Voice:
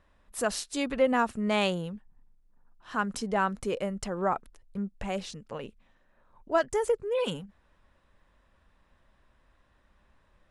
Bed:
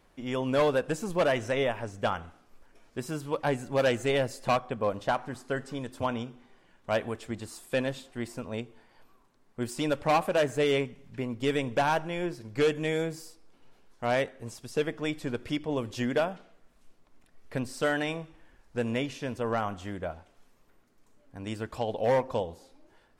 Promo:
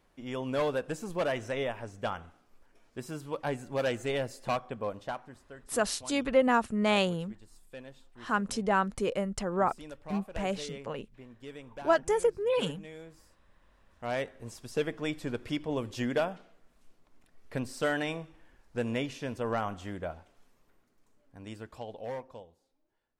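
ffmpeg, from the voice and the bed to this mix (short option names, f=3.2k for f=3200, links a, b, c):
-filter_complex "[0:a]adelay=5350,volume=0.5dB[a];[1:a]volume=10.5dB,afade=t=out:st=4.74:d=0.77:silence=0.237137,afade=t=in:st=13.52:d=1.1:silence=0.16788,afade=t=out:st=20.26:d=2.26:silence=0.11885[b];[a][b]amix=inputs=2:normalize=0"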